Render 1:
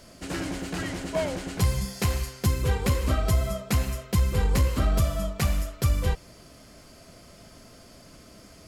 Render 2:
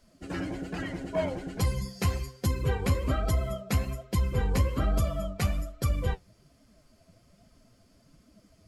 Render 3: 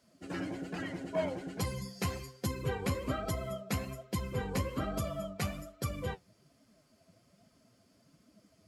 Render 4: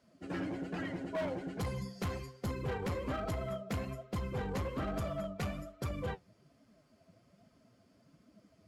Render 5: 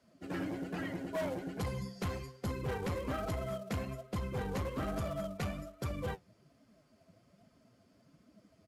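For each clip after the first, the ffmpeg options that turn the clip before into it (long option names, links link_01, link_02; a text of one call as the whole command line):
ffmpeg -i in.wav -af "afftdn=noise_reduction=13:noise_floor=-38,flanger=delay=3.2:depth=8.4:regen=54:speed=1.2:shape=triangular,volume=2dB" out.wav
ffmpeg -i in.wav -af "highpass=120,volume=-3.5dB" out.wav
ffmpeg -i in.wav -af "highshelf=frequency=4200:gain=-10.5,asoftclip=type=hard:threshold=-33dB,volume=1dB" out.wav
ffmpeg -i in.wav -filter_complex "[0:a]acrossover=split=350|2200[link_01][link_02][link_03];[link_02]acrusher=bits=4:mode=log:mix=0:aa=0.000001[link_04];[link_01][link_04][link_03]amix=inputs=3:normalize=0,aresample=32000,aresample=44100" out.wav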